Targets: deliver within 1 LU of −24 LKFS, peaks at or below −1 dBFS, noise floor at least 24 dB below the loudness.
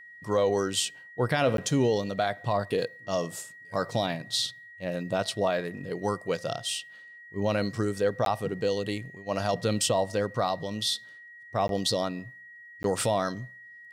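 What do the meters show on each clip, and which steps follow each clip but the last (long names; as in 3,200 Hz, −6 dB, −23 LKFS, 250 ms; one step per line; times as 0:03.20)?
number of dropouts 4; longest dropout 12 ms; interfering tone 1,900 Hz; level of the tone −46 dBFS; integrated loudness −29.0 LKFS; sample peak −14.5 dBFS; target loudness −24.0 LKFS
→ repair the gap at 0:01.57/0:08.25/0:11.68/0:12.83, 12 ms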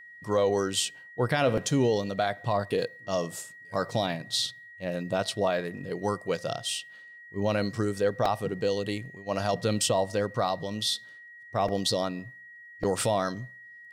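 number of dropouts 0; interfering tone 1,900 Hz; level of the tone −46 dBFS
→ notch filter 1,900 Hz, Q 30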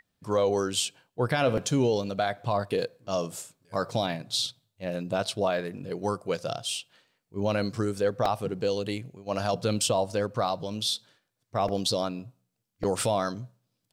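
interfering tone none found; integrated loudness −29.0 LKFS; sample peak −14.0 dBFS; target loudness −24.0 LKFS
→ level +5 dB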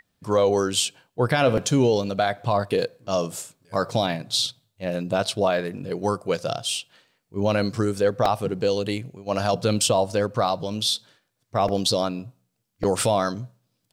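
integrated loudness −24.0 LKFS; sample peak −9.0 dBFS; background noise floor −75 dBFS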